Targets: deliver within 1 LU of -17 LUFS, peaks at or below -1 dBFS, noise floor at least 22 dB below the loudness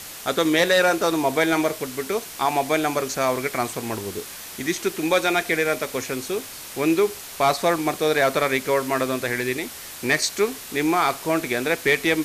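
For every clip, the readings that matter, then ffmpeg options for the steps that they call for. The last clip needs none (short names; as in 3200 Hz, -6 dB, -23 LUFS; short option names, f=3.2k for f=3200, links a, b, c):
noise floor -38 dBFS; noise floor target -45 dBFS; loudness -22.5 LUFS; peak -9.0 dBFS; loudness target -17.0 LUFS
-> -af "afftdn=nr=7:nf=-38"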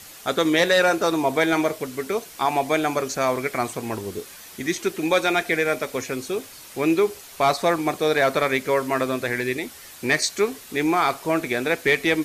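noise floor -43 dBFS; noise floor target -45 dBFS
-> -af "afftdn=nr=6:nf=-43"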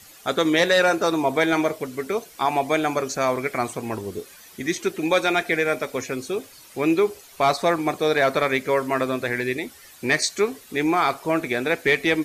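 noise floor -48 dBFS; loudness -22.5 LUFS; peak -8.5 dBFS; loudness target -17.0 LUFS
-> -af "volume=5.5dB"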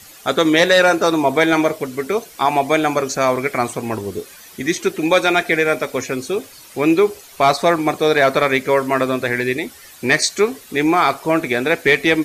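loudness -17.0 LUFS; peak -3.0 dBFS; noise floor -42 dBFS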